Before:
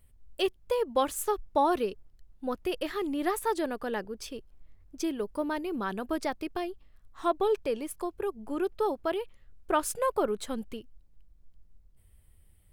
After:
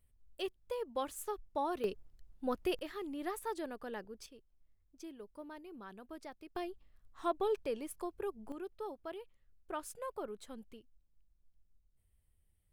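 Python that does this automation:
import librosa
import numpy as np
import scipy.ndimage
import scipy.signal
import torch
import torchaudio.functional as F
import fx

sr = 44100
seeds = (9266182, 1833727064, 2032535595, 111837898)

y = fx.gain(x, sr, db=fx.steps((0.0, -11.0), (1.84, -3.0), (2.79, -10.5), (4.26, -17.5), (6.56, -7.0), (8.52, -14.5)))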